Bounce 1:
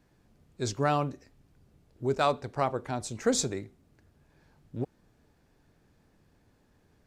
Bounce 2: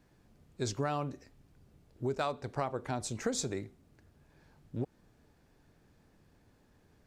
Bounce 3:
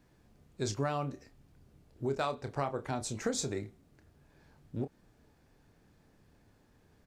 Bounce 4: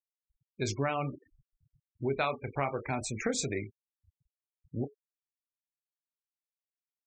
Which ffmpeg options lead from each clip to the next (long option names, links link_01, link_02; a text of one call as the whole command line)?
ffmpeg -i in.wav -af "acompressor=threshold=-30dB:ratio=5" out.wav
ffmpeg -i in.wav -filter_complex "[0:a]asplit=2[link_01][link_02];[link_02]adelay=29,volume=-10dB[link_03];[link_01][link_03]amix=inputs=2:normalize=0" out.wav
ffmpeg -i in.wav -af "equalizer=frequency=2300:width=3.1:gain=12,flanger=delay=6.2:depth=4.2:regen=-86:speed=0.56:shape=triangular,afftfilt=real='re*gte(hypot(re,im),0.00631)':imag='im*gte(hypot(re,im),0.00631)':win_size=1024:overlap=0.75,volume=6dB" out.wav